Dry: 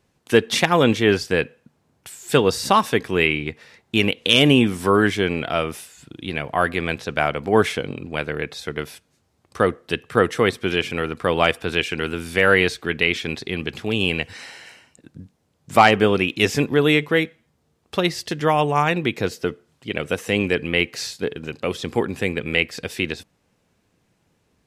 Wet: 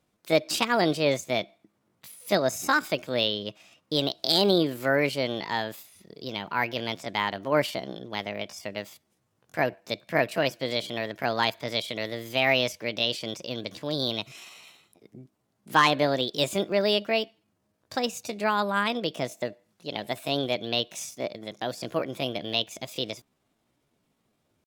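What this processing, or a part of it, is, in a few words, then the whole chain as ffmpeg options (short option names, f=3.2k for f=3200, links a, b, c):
chipmunk voice: -af "asetrate=60591,aresample=44100,atempo=0.727827,volume=-7dB"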